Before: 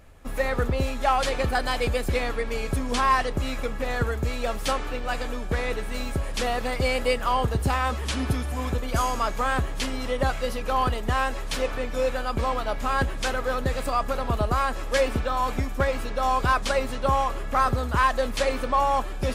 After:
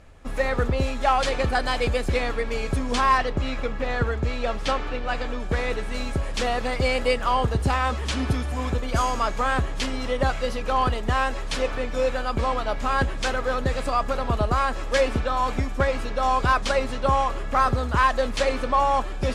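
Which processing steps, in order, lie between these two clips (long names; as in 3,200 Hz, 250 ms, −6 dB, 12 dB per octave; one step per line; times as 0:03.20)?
low-pass filter 8,200 Hz 12 dB per octave, from 0:03.18 4,900 Hz, from 0:05.40 8,100 Hz
level +1.5 dB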